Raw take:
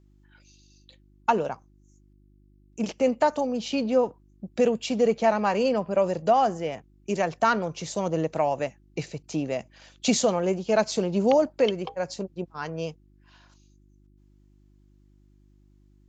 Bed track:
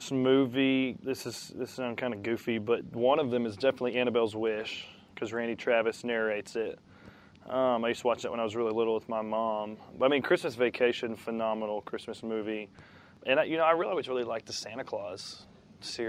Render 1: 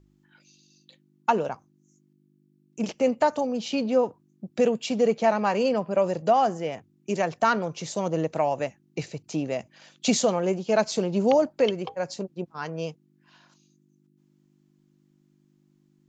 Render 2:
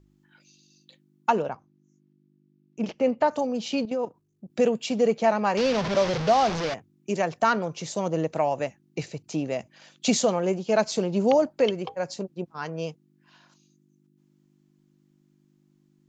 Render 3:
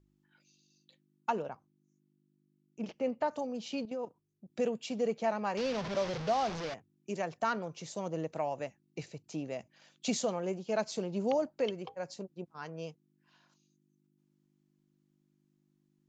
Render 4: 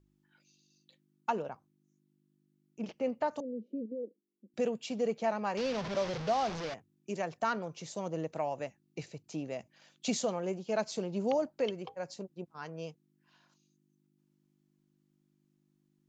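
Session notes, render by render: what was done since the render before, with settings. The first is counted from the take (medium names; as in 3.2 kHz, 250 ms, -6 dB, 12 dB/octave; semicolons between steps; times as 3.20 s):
de-hum 50 Hz, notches 2
1.42–3.31 s: distance through air 150 m; 3.85–4.50 s: level held to a coarse grid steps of 13 dB; 5.57–6.74 s: one-bit delta coder 32 kbps, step -22.5 dBFS
trim -10 dB
3.40–4.54 s: elliptic band-pass 210–510 Hz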